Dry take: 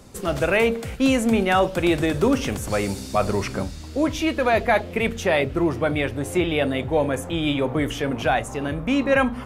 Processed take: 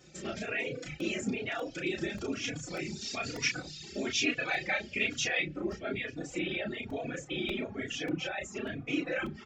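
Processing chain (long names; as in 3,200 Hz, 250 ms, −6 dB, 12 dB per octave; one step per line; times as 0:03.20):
brickwall limiter −17.5 dBFS, peak gain reduction 8.5 dB
random phases in short frames
parametric band 990 Hz −13 dB 0.63 octaves
convolution reverb, pre-delay 3 ms, DRR 18 dB
downsampling to 16,000 Hz
0:03.01–0:05.45: parametric band 4,100 Hz +7.5 dB 2.7 octaves
double-tracking delay 33 ms −3.5 dB
reverb reduction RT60 0.74 s
regular buffer underruns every 0.59 s, samples 64, repeat, from 0:01.00
barber-pole flanger 3.5 ms +1.1 Hz
level −4.5 dB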